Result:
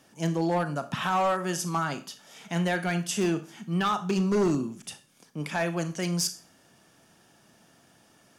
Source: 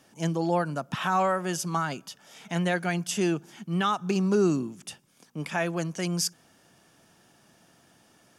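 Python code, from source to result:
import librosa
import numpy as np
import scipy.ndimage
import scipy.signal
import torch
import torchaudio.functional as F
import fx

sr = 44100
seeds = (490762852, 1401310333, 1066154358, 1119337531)

y = fx.rev_schroeder(x, sr, rt60_s=0.36, comb_ms=27, drr_db=10.0)
y = np.clip(10.0 ** (19.5 / 20.0) * y, -1.0, 1.0) / 10.0 ** (19.5 / 20.0)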